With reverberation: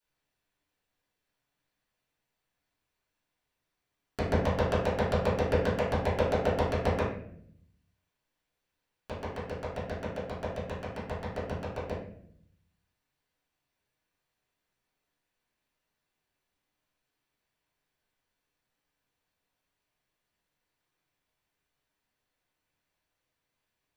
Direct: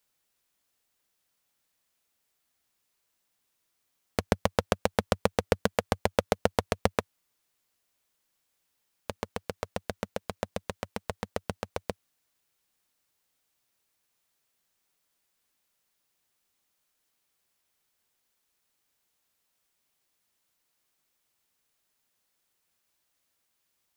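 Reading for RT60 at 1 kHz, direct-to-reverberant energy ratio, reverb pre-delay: 0.55 s, -12.0 dB, 3 ms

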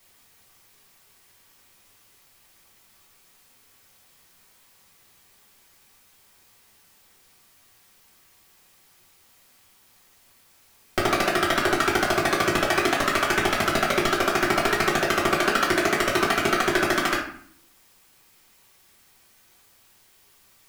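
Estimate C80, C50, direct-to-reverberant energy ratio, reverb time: 9.5 dB, 5.0 dB, -5.0 dB, 0.55 s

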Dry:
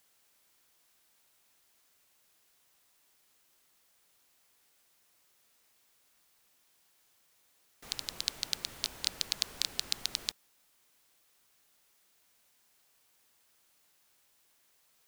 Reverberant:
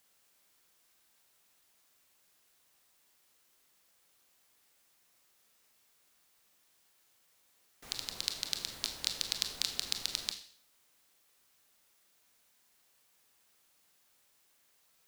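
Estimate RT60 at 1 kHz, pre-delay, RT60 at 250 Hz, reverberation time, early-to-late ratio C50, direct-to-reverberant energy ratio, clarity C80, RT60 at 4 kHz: 0.55 s, 25 ms, 0.55 s, 0.55 s, 10.0 dB, 6.5 dB, 13.5 dB, 0.55 s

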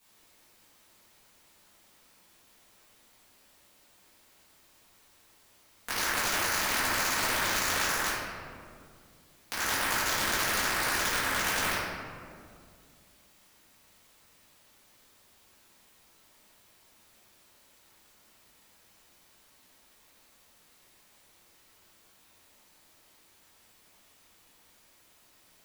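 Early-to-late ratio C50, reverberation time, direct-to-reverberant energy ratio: -2.0 dB, 2.1 s, -13.0 dB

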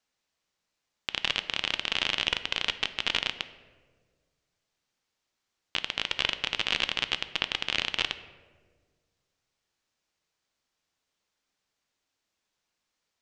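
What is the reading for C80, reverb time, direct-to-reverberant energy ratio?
15.0 dB, 1.6 s, 11.0 dB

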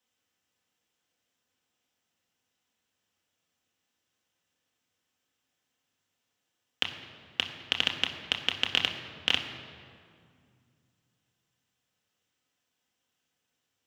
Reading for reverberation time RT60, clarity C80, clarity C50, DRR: 2.2 s, 8.5 dB, 7.5 dB, 2.0 dB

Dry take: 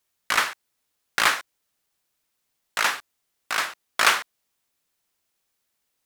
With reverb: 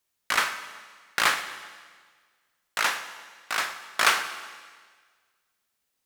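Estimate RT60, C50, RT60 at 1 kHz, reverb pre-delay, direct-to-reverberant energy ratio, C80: 1.6 s, 10.5 dB, 1.5 s, 21 ms, 9.0 dB, 11.5 dB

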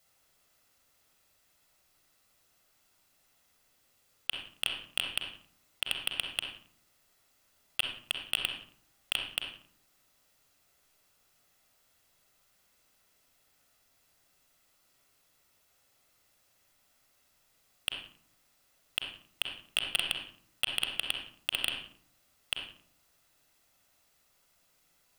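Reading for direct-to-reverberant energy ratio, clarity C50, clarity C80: 2.5 dB, 4.0 dB, 8.0 dB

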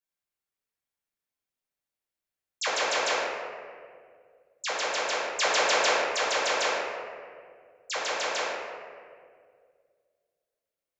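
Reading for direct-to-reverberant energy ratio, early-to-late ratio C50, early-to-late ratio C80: -8.5 dB, -1.5 dB, 0.5 dB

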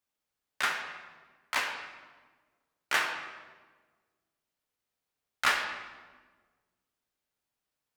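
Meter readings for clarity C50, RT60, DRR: 5.5 dB, 1.4 s, 2.0 dB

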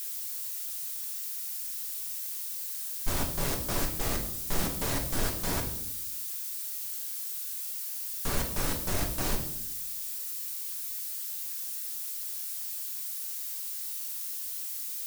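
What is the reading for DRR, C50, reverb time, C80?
2.0 dB, 8.0 dB, 0.75 s, 11.0 dB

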